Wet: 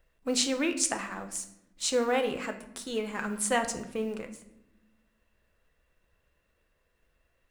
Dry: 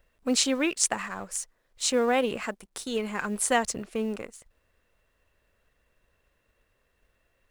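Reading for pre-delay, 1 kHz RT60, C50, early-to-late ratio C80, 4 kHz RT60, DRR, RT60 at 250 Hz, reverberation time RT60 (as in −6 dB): 6 ms, 0.70 s, 11.5 dB, 14.0 dB, 0.55 s, 6.0 dB, 1.5 s, 0.85 s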